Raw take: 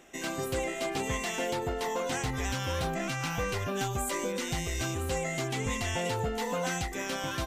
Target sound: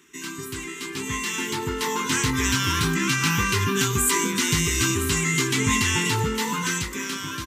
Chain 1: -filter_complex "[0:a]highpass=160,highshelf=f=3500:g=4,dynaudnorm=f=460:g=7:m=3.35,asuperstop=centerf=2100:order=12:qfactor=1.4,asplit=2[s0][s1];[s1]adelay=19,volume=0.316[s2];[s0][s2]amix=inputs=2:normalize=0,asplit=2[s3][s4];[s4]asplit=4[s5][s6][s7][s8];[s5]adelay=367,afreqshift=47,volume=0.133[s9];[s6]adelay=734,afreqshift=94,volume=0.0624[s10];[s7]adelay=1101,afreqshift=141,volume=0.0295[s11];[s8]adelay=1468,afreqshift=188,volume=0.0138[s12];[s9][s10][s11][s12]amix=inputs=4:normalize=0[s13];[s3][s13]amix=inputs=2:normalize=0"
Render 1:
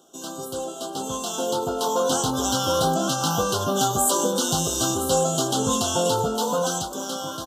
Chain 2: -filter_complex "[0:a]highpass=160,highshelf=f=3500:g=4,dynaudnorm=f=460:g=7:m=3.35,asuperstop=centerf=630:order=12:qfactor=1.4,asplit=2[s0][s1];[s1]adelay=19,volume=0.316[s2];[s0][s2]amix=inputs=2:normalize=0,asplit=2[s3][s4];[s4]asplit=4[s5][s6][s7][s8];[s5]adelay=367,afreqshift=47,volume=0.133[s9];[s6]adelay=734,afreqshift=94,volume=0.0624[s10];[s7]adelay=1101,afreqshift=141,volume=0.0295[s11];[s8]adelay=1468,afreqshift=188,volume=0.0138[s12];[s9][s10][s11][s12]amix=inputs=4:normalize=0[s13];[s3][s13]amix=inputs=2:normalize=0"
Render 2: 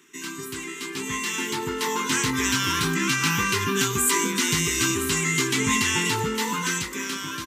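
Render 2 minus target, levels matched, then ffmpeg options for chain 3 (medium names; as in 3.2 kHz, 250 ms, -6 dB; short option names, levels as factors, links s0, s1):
125 Hz band -4.0 dB
-filter_complex "[0:a]highpass=79,highshelf=f=3500:g=4,dynaudnorm=f=460:g=7:m=3.35,asuperstop=centerf=630:order=12:qfactor=1.4,asplit=2[s0][s1];[s1]adelay=19,volume=0.316[s2];[s0][s2]amix=inputs=2:normalize=0,asplit=2[s3][s4];[s4]asplit=4[s5][s6][s7][s8];[s5]adelay=367,afreqshift=47,volume=0.133[s9];[s6]adelay=734,afreqshift=94,volume=0.0624[s10];[s7]adelay=1101,afreqshift=141,volume=0.0295[s11];[s8]adelay=1468,afreqshift=188,volume=0.0138[s12];[s9][s10][s11][s12]amix=inputs=4:normalize=0[s13];[s3][s13]amix=inputs=2:normalize=0"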